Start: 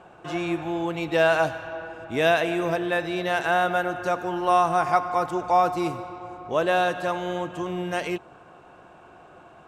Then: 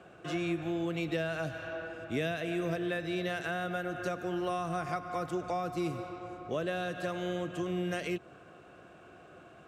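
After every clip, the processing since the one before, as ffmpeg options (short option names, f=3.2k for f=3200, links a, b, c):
-filter_complex "[0:a]highpass=54,equalizer=f=900:t=o:w=0.44:g=-14,acrossover=split=220[a][b];[b]acompressor=threshold=-30dB:ratio=6[c];[a][c]amix=inputs=2:normalize=0,volume=-2dB"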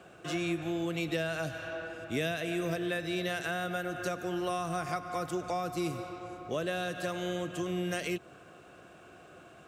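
-af "highshelf=f=4.4k:g=9.5"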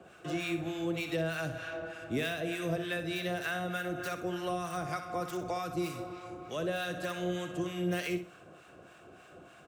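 -filter_complex "[0:a]acrossover=split=910[a][b];[a]aeval=exprs='val(0)*(1-0.7/2+0.7/2*cos(2*PI*3.3*n/s))':c=same[c];[b]aeval=exprs='val(0)*(1-0.7/2-0.7/2*cos(2*PI*3.3*n/s))':c=same[d];[c][d]amix=inputs=2:normalize=0,acrossover=split=150|4200[e][f][g];[g]aeval=exprs='(mod(126*val(0)+1,2)-1)/126':c=same[h];[e][f][h]amix=inputs=3:normalize=0,aecho=1:1:62|124|186:0.316|0.0854|0.0231,volume=2dB"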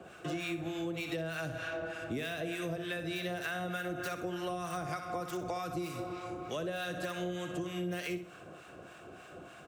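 -af "acompressor=threshold=-38dB:ratio=4,volume=3.5dB"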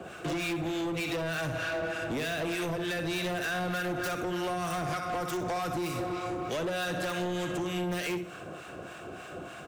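-af "asoftclip=type=hard:threshold=-37dB,volume=8dB"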